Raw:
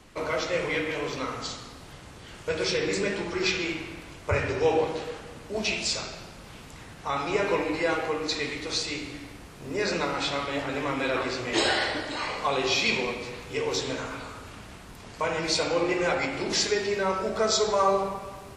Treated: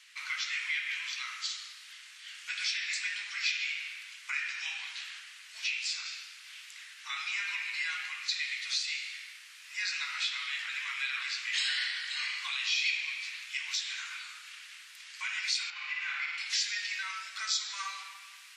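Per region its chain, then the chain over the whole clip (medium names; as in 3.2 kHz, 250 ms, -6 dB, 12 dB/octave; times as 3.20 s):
5.64–6.06 s: high-pass 420 Hz + tilt shelf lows +6.5 dB, about 1.4 kHz + doubling 18 ms -12 dB
15.70–16.38 s: high-pass 140 Hz 6 dB/octave + tape spacing loss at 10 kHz 23 dB + flutter echo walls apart 9.6 m, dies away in 1.2 s
whole clip: inverse Chebyshev high-pass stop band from 550 Hz, stop band 60 dB; treble shelf 7.9 kHz -9.5 dB; compression 2:1, threshold -37 dBFS; trim +4.5 dB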